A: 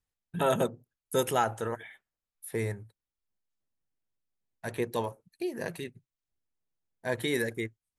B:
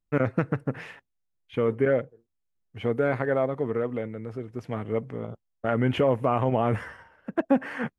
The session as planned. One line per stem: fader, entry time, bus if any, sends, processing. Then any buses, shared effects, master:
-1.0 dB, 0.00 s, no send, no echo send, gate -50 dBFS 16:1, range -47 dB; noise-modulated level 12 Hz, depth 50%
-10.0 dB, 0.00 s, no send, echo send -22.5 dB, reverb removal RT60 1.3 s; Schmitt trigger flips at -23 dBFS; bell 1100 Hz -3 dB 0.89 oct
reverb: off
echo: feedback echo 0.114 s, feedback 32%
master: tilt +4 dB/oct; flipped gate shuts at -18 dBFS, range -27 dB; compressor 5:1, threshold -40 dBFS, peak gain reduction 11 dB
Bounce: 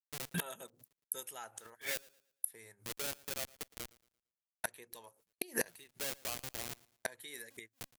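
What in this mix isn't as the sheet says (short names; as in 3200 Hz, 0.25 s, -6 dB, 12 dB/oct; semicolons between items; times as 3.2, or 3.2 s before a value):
stem A -1.0 dB -> +9.0 dB; master: missing compressor 5:1, threshold -40 dBFS, peak gain reduction 11 dB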